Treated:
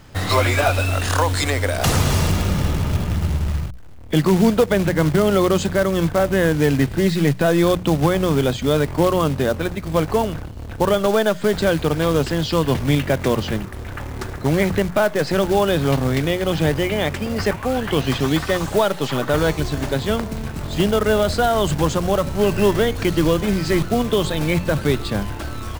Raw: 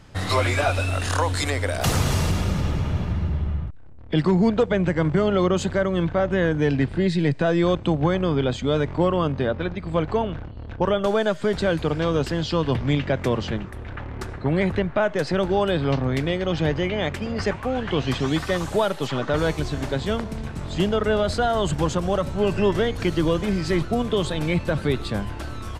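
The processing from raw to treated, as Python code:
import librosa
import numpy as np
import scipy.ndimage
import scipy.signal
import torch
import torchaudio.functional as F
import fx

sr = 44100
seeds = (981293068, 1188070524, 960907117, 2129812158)

y = fx.quant_float(x, sr, bits=2)
y = fx.hum_notches(y, sr, base_hz=60, count=3)
y = F.gain(torch.from_numpy(y), 4.0).numpy()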